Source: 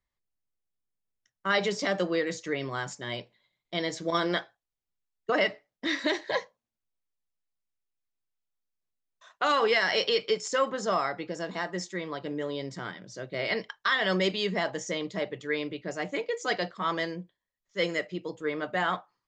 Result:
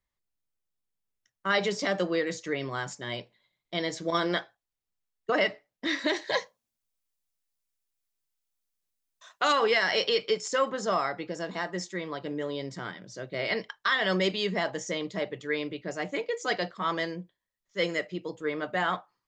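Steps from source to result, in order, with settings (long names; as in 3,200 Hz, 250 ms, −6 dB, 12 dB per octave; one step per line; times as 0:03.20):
0:06.16–0:09.53: high-shelf EQ 3,900 Hz +9.5 dB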